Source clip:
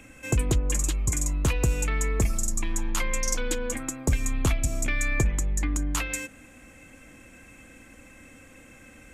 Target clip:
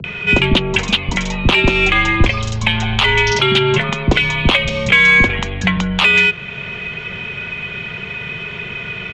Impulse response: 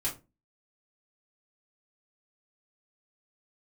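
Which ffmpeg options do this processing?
-filter_complex "[0:a]acrossover=split=330[s0][s1];[s1]adelay=40[s2];[s0][s2]amix=inputs=2:normalize=0,highpass=f=160:t=q:w=0.5412,highpass=f=160:t=q:w=1.307,lowpass=f=3500:t=q:w=0.5176,lowpass=f=3500:t=q:w=0.7071,lowpass=f=3500:t=q:w=1.932,afreqshift=-110,acrossover=split=100[s3][s4];[s4]aexciter=amount=2.1:drive=9.6:freq=2600[s5];[s3][s5]amix=inputs=2:normalize=0,asettb=1/sr,asplit=3[s6][s7][s8];[s6]atrim=end=1.564[s9];[s7]atrim=start=1.56:end=3.32,asetpts=PTS-STARTPTS,afade=t=in:d=0.004:c=qsin,afade=t=out:st=1.756:d=0.004:c=qsin,asubboost=boost=10.5:cutoff=80[s10];[s8]atrim=start=3.316[s11];[s9][s10]acrossfade=d=0.004:c1=hsin:c2=qsin[s12];[s12][s11]acrossfade=d=0.004:c1=qsin:c2=hsin,asplit=2[s13][s14];[s14]acompressor=mode=upward:threshold=0.0178:ratio=2.5,volume=0.794[s15];[s13][s15]amix=inputs=2:normalize=0,alimiter=level_in=5.62:limit=0.891:release=50:level=0:latency=1,volume=0.891"

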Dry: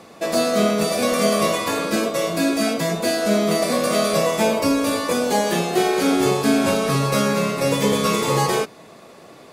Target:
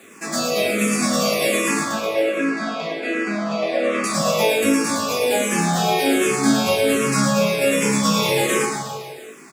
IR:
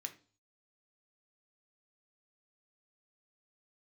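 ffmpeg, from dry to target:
-filter_complex "[0:a]acrusher=bits=7:mix=0:aa=0.5,asettb=1/sr,asplit=3[s0][s1][s2];[s0]atrim=end=1.834[s3];[s1]atrim=start=1.83:end=4.04,asetpts=PTS-STARTPTS,afade=t=in:d=0.004:c=qsin,afade=t=out:st=2.206:d=0.004:c=qsin,highpass=300,lowpass=2600[s4];[s2]atrim=start=4.036[s5];[s3][s4]acrossfade=d=0.004:c1=hsin:c2=qsin[s6];[s6][s5]acrossfade=d=0.004:c1=qsin:c2=hsin,aecho=1:1:110|231|364.1|510.5|671.6:0.631|0.398|0.251|0.158|0.1[s7];[1:a]atrim=start_sample=2205,atrim=end_sample=3528[s8];[s7][s8]afir=irnorm=-1:irlink=0,asplit=2[s9][s10];[s10]afreqshift=-1.3[s11];[s9][s11]amix=inputs=2:normalize=1,volume=2.11"

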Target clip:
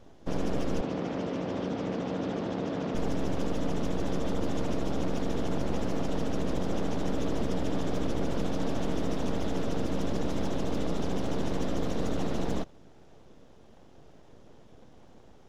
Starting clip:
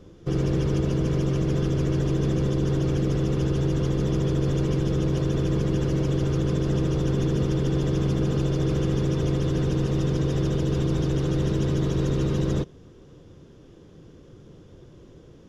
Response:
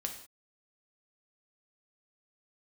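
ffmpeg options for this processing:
-filter_complex "[0:a]aeval=exprs='abs(val(0))':c=same,asettb=1/sr,asplit=3[s0][s1][s2];[s0]atrim=end=0.814[s3];[s1]atrim=start=0.81:end=2.95,asetpts=PTS-STARTPTS,afade=t=in:d=0.004:c=qsin,afade=t=out:st=2.136:d=0.004:c=qsin,highpass=130,lowpass=4600[s4];[s2]atrim=start=2.946[s5];[s3][s4]acrossfade=d=0.004:c1=hsin:c2=qsin[s6];[s6][s5]acrossfade=d=0.004:c1=qsin:c2=hsin,volume=0.668"

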